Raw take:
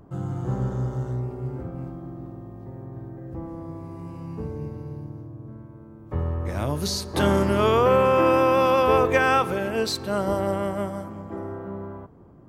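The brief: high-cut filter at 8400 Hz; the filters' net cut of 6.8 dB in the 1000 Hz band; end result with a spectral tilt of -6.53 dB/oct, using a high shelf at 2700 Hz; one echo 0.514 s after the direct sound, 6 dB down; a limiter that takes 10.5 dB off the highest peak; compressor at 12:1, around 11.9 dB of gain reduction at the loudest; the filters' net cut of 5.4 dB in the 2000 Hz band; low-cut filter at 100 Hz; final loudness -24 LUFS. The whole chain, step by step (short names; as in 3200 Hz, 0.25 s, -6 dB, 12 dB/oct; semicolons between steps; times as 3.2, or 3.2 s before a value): HPF 100 Hz; LPF 8400 Hz; bell 1000 Hz -7.5 dB; bell 2000 Hz -8 dB; high shelf 2700 Hz +6.5 dB; compressor 12:1, threshold -29 dBFS; limiter -30 dBFS; echo 0.514 s -6 dB; gain +14 dB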